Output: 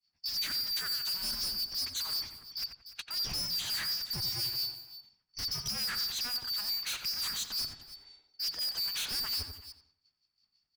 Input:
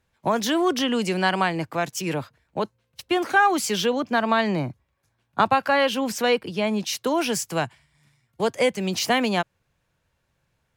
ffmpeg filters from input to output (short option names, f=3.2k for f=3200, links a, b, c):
-filter_complex "[0:a]afftfilt=real='real(if(lt(b,272),68*(eq(floor(b/68),0)*1+eq(floor(b/68),1)*2+eq(floor(b/68),2)*3+eq(floor(b/68),3)*0)+mod(b,68),b),0)':imag='imag(if(lt(b,272),68*(eq(floor(b/68),0)*1+eq(floor(b/68),1)*2+eq(floor(b/68),2)*3+eq(floor(b/68),3)*0)+mod(b,68),b),0)':win_size=2048:overlap=0.75,acrossover=split=140|3000[a][b][c];[a]acompressor=threshold=-25dB:ratio=6[d];[d][b][c]amix=inputs=3:normalize=0,lowpass=f=4.5k:t=q:w=1.6,acontrast=32,volume=26dB,asoftclip=hard,volume=-26dB,asplit=2[e][f];[f]aecho=0:1:294:0.119[g];[e][g]amix=inputs=2:normalize=0,acrossover=split=2400[h][i];[h]aeval=exprs='val(0)*(1-0.7/2+0.7/2*cos(2*PI*5.7*n/s))':c=same[j];[i]aeval=exprs='val(0)*(1-0.7/2-0.7/2*cos(2*PI*5.7*n/s))':c=same[k];[j][k]amix=inputs=2:normalize=0,adynamicequalizer=threshold=0.00708:dfrequency=3400:dqfactor=1.6:tfrequency=3400:tqfactor=1.6:attack=5:release=100:ratio=0.375:range=2:mode=cutabove:tftype=bell,agate=range=-33dB:threshold=-57dB:ratio=3:detection=peak,equalizer=f=500:t=o:w=2.1:g=-11,asplit=2[l][m];[m]adelay=89,lowpass=f=1.6k:p=1,volume=-5dB,asplit=2[n][o];[o]adelay=89,lowpass=f=1.6k:p=1,volume=0.4,asplit=2[p][q];[q]adelay=89,lowpass=f=1.6k:p=1,volume=0.4,asplit=2[r][s];[s]adelay=89,lowpass=f=1.6k:p=1,volume=0.4,asplit=2[t][u];[u]adelay=89,lowpass=f=1.6k:p=1,volume=0.4[v];[n][p][r][t][v]amix=inputs=5:normalize=0[w];[l][w]amix=inputs=2:normalize=0,asoftclip=type=tanh:threshold=-28.5dB"